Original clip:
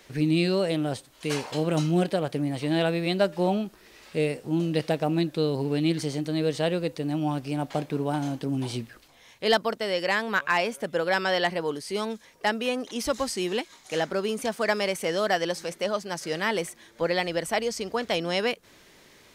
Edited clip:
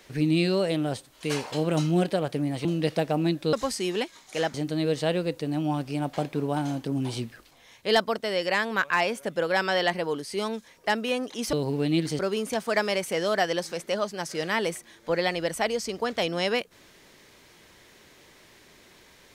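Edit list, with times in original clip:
0:02.65–0:04.57: remove
0:05.45–0:06.11: swap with 0:13.10–0:14.11

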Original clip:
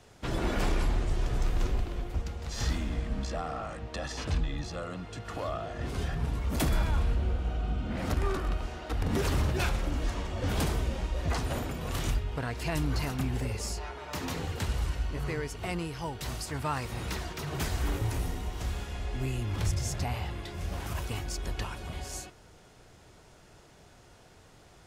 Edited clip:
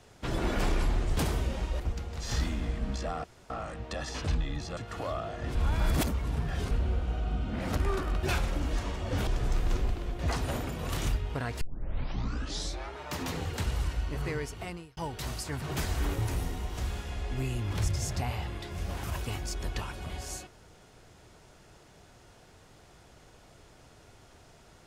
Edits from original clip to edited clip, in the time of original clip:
0:01.17–0:02.09: swap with 0:10.58–0:11.21
0:03.53: splice in room tone 0.26 s
0:04.80–0:05.14: remove
0:05.92–0:07.08: reverse
0:08.60–0:09.54: remove
0:12.63: tape start 1.35 s
0:15.46–0:15.99: fade out
0:16.64–0:17.45: remove

